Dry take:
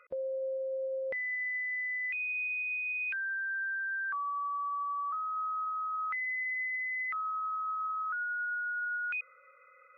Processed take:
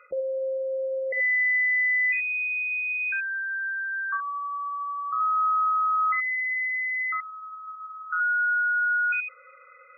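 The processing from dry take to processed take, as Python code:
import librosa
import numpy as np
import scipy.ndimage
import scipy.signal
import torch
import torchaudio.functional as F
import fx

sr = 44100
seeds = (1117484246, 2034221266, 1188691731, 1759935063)

y = fx.room_early_taps(x, sr, ms=(45, 78), db=(-8.5, -6.0))
y = fx.spec_gate(y, sr, threshold_db=-25, keep='strong')
y = y * librosa.db_to_amplitude(6.5)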